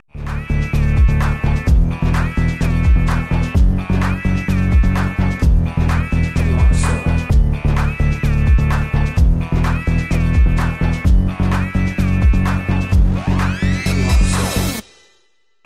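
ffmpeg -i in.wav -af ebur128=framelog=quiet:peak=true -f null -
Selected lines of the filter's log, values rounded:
Integrated loudness:
  I:         -16.8 LUFS
  Threshold: -27.0 LUFS
Loudness range:
  LRA:         0.5 LU
  Threshold: -36.7 LUFS
  LRA low:   -16.9 LUFS
  LRA high:  -16.4 LUFS
True peak:
  Peak:       -2.9 dBFS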